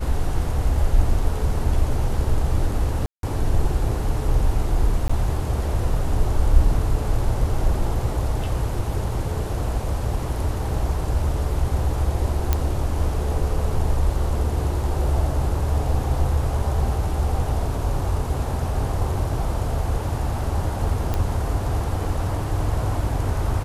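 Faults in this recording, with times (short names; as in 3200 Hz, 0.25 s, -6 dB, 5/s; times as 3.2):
3.06–3.23 gap 0.172 s
5.08–5.09 gap 15 ms
12.53 pop -6 dBFS
21.14 pop -11 dBFS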